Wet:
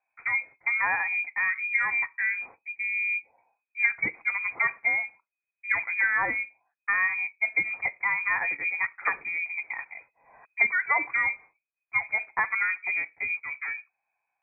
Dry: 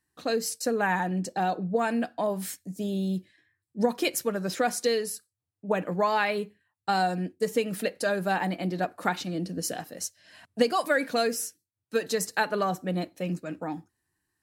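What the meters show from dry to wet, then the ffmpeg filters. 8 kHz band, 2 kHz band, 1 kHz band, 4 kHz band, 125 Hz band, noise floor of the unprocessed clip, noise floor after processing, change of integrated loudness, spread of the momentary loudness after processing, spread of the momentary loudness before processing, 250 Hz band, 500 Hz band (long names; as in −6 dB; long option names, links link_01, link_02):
below −40 dB, +10.0 dB, −4.5 dB, below −40 dB, below −20 dB, −85 dBFS, below −85 dBFS, +2.5 dB, 10 LU, 10 LU, −22.0 dB, −20.0 dB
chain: -af "lowpass=frequency=2200:width_type=q:width=0.5098,lowpass=frequency=2200:width_type=q:width=0.6013,lowpass=frequency=2200:width_type=q:width=0.9,lowpass=frequency=2200:width_type=q:width=2.563,afreqshift=-2600"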